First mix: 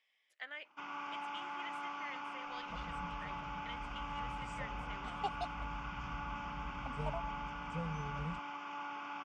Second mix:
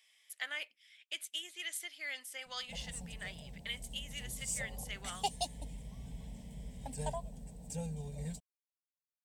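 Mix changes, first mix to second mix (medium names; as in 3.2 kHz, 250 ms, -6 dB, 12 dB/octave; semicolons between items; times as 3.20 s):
first sound: muted; master: remove tape spacing loss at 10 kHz 33 dB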